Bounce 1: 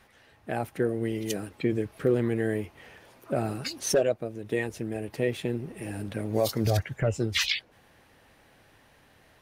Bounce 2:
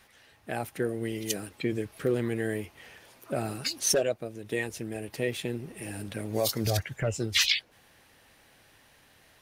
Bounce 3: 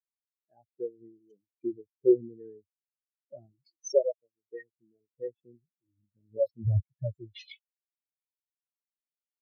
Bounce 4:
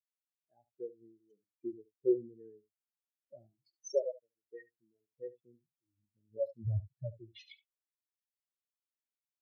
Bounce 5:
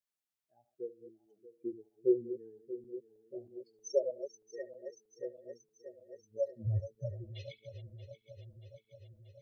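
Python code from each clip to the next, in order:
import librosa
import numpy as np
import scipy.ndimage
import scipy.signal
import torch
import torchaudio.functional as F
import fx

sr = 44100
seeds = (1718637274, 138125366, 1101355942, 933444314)

y1 = fx.high_shelf(x, sr, hz=2200.0, db=9.0)
y1 = y1 * 10.0 ** (-3.5 / 20.0)
y2 = fx.spectral_expand(y1, sr, expansion=4.0)
y3 = y2 + 10.0 ** (-17.5 / 20.0) * np.pad(y2, (int(71 * sr / 1000.0), 0))[:len(y2)]
y3 = y3 * 10.0 ** (-7.5 / 20.0)
y4 = fx.reverse_delay_fb(y3, sr, ms=316, feedback_pct=81, wet_db=-13.0)
y4 = y4 * 10.0 ** (1.0 / 20.0)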